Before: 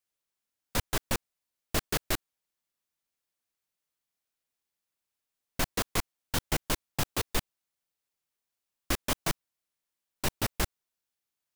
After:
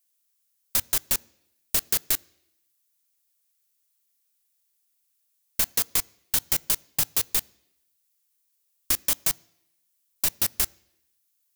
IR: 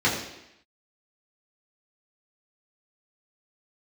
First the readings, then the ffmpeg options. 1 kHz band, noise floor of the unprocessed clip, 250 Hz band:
−4.5 dB, below −85 dBFS, −7.0 dB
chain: -filter_complex "[0:a]crystalizer=i=6:c=0,acompressor=threshold=-15dB:ratio=6,asplit=2[link_01][link_02];[1:a]atrim=start_sample=2205,highshelf=frequency=11000:gain=8.5[link_03];[link_02][link_03]afir=irnorm=-1:irlink=0,volume=-37dB[link_04];[link_01][link_04]amix=inputs=2:normalize=0,volume=-4dB"

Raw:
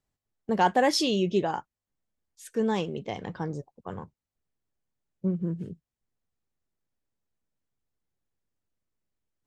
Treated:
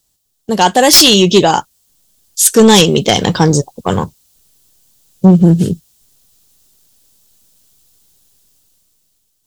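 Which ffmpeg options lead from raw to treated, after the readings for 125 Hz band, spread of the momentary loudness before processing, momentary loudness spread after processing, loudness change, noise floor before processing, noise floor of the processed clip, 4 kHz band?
+21.0 dB, 18 LU, 14 LU, +18.5 dB, below −85 dBFS, −64 dBFS, +23.5 dB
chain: -af "dynaudnorm=framelen=500:gausssize=5:maxgain=13dB,aexciter=amount=5.2:drive=4.9:freq=3000,aeval=exprs='1.12*sin(PI/2*2.82*val(0)/1.12)':channel_layout=same,volume=-2dB"

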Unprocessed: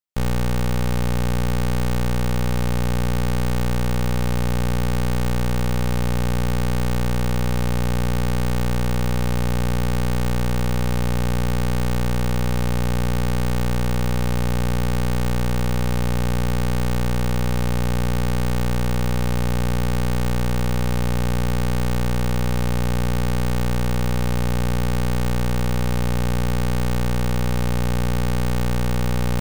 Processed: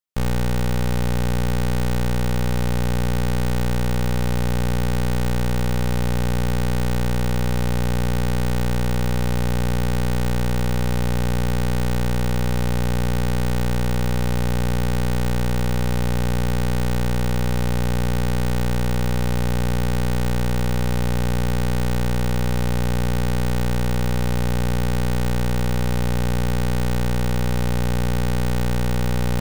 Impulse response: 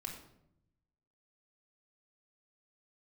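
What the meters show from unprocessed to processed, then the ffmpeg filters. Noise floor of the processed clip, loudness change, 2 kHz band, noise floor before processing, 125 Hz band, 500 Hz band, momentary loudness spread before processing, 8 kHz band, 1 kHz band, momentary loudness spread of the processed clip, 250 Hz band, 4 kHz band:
−19 dBFS, 0.0 dB, +0.5 dB, −19 dBFS, 0.0 dB, +0.5 dB, 0 LU, 0.0 dB, −0.5 dB, 0 LU, 0.0 dB, 0.0 dB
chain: -filter_complex "[0:a]asplit=2[link_01][link_02];[link_02]highpass=590,lowpass=5900[link_03];[1:a]atrim=start_sample=2205,adelay=97[link_04];[link_03][link_04]afir=irnorm=-1:irlink=0,volume=-11dB[link_05];[link_01][link_05]amix=inputs=2:normalize=0"

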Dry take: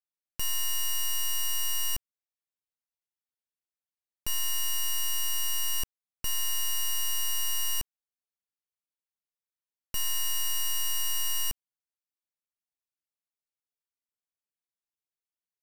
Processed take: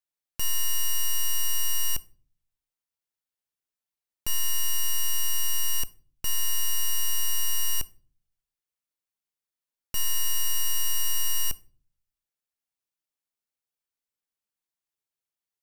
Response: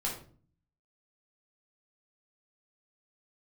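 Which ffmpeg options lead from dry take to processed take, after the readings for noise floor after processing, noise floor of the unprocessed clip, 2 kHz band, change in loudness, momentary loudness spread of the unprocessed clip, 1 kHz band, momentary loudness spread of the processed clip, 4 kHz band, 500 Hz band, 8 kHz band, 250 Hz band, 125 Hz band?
below −85 dBFS, below −85 dBFS, +2.0 dB, +2.0 dB, 6 LU, +1.0 dB, 6 LU, +1.0 dB, can't be measured, +2.5 dB, +1.5 dB, +6.0 dB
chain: -filter_complex "[0:a]asplit=2[link_01][link_02];[link_02]highshelf=frequency=5500:gain=11.5[link_03];[1:a]atrim=start_sample=2205[link_04];[link_03][link_04]afir=irnorm=-1:irlink=0,volume=-21.5dB[link_05];[link_01][link_05]amix=inputs=2:normalize=0,volume=1dB"

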